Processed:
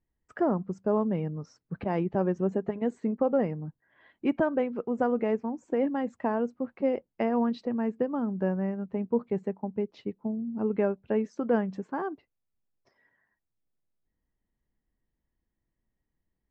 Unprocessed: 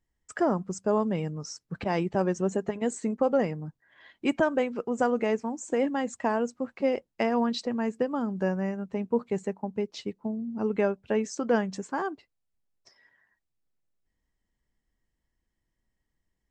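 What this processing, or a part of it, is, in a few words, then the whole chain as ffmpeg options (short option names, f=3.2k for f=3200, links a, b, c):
phone in a pocket: -af "lowpass=3.4k,equalizer=f=220:t=o:w=2.8:g=3,highshelf=f=2.3k:g=-8.5,volume=-2.5dB"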